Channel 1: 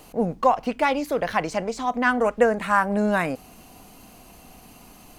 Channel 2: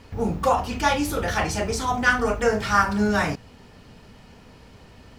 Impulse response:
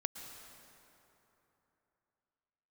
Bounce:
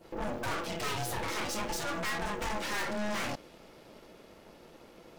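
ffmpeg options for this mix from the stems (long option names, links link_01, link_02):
-filter_complex "[0:a]volume=-17dB[link_01];[1:a]aeval=exprs='val(0)*sin(2*PI*420*n/s)':channel_layout=same,adynamicequalizer=threshold=0.0224:dfrequency=1500:dqfactor=0.7:tfrequency=1500:tqfactor=0.7:attack=5:release=100:ratio=0.375:range=2:mode=boostabove:tftype=highshelf,volume=-1,volume=0dB[link_02];[link_01][link_02]amix=inputs=2:normalize=0,aeval=exprs='(tanh(39.8*val(0)+0.7)-tanh(0.7))/39.8':channel_layout=same"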